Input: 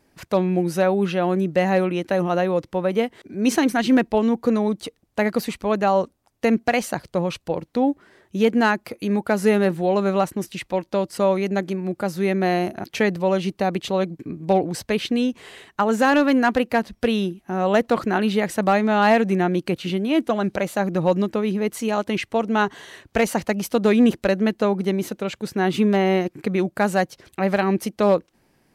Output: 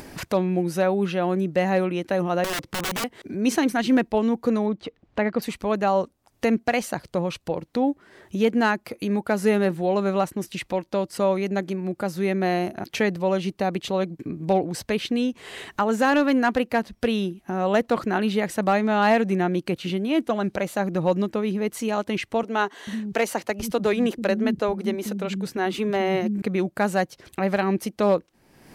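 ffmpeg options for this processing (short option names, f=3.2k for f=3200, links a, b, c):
-filter_complex "[0:a]asettb=1/sr,asplit=3[a][b][c];[a]atrim=end=2.444[d];[b]atrim=start=2.44:end=3.04,asetpts=PTS-STARTPTS,afade=t=in:d=0.004:c=qsin,afade=t=out:st=0.596:d=0.004:c=qsin,aeval=exprs='(mod(10.6*val(0)+1,2)-1)/10.6':c=same[e];[c]atrim=start=3.036[f];[d][e]acrossfade=d=0.004:c1=hsin:c2=qsin[g];[g][f]acrossfade=d=0.004:c1=qsin:c2=hsin,asettb=1/sr,asplit=3[h][i][j];[h]atrim=end=4.664[k];[i]atrim=start=4.66:end=5.42,asetpts=PTS-STARTPTS,afade=t=in:d=0.004:c=qsin,afade=t=out:st=0.756:d=0.004:c=qsin,lowpass=3k[l];[j]atrim=start=5.416[m];[k][l]acrossfade=d=0.004:c1=hsin:c2=qsin[n];[n][m]acrossfade=d=0.004:c1=qsin:c2=hsin,asettb=1/sr,asplit=3[o][p][q];[o]atrim=end=22.434[r];[p]atrim=start=22.43:end=26.42,asetpts=PTS-STARTPTS,afade=t=in:d=0.004:c=qsin,afade=t=out:st=3.986:d=0.004:c=qsin,acrossover=split=230[s][t];[s]adelay=440[u];[u][t]amix=inputs=2:normalize=0,atrim=end_sample=175959[v];[q]atrim=start=26.416[w];[r][v]acrossfade=d=0.004:c1=hsin:c2=qsin[x];[x][w]acrossfade=d=0.004:c1=qsin:c2=hsin,acompressor=mode=upward:threshold=-22dB:ratio=2.5,volume=-2.5dB"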